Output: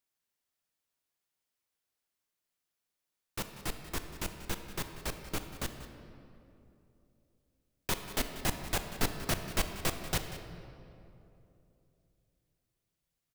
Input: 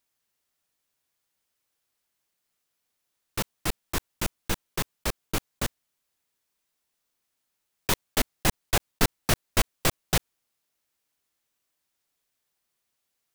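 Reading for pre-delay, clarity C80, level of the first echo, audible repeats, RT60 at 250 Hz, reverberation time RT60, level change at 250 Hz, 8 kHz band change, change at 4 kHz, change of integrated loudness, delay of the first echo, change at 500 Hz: 3 ms, 8.0 dB, -15.5 dB, 1, 3.4 s, 2.9 s, -6.5 dB, -7.5 dB, -7.5 dB, -7.5 dB, 0.188 s, -7.0 dB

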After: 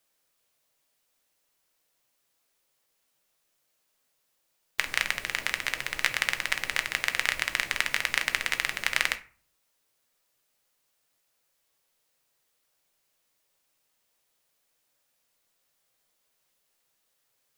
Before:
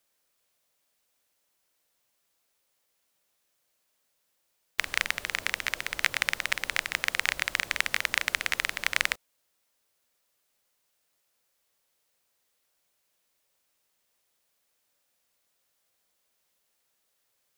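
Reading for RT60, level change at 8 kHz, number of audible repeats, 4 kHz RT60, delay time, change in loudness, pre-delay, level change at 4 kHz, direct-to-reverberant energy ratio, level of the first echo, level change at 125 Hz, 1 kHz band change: 0.40 s, +0.5 dB, none, 0.25 s, none, +0.5 dB, 6 ms, +0.5 dB, 8.0 dB, none, +1.5 dB, +0.5 dB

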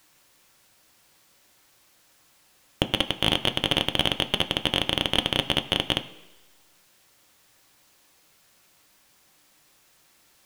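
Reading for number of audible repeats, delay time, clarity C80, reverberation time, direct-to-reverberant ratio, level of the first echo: none, none, 17.0 dB, 1.1 s, 8.0 dB, none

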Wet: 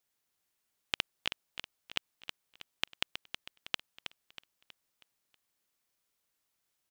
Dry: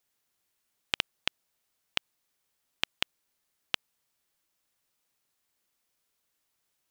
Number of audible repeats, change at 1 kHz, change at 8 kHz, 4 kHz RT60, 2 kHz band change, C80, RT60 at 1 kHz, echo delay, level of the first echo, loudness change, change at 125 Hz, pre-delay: 4, -3.0 dB, -3.0 dB, none, -3.0 dB, none, none, 0.32 s, -9.0 dB, -5.0 dB, -3.0 dB, none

